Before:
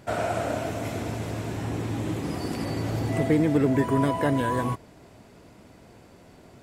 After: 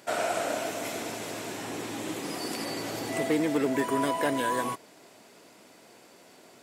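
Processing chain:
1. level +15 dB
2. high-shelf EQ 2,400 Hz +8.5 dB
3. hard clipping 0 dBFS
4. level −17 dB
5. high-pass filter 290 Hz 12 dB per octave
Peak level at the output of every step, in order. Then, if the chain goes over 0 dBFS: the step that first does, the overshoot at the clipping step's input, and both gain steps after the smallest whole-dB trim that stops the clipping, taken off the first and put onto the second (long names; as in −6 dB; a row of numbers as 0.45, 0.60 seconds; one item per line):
+4.5, +6.0, 0.0, −17.0, −14.0 dBFS
step 1, 6.0 dB
step 1 +9 dB, step 4 −11 dB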